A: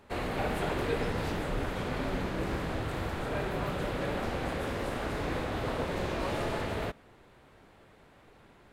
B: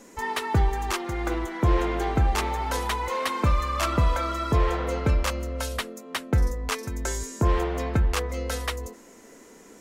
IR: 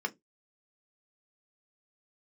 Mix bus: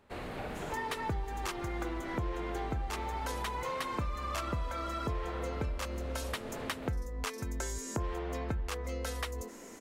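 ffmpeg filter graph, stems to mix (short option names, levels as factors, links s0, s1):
-filter_complex "[0:a]volume=0.447[s0];[1:a]adelay=550,volume=1.12[s1];[s0][s1]amix=inputs=2:normalize=0,acompressor=threshold=0.0178:ratio=4"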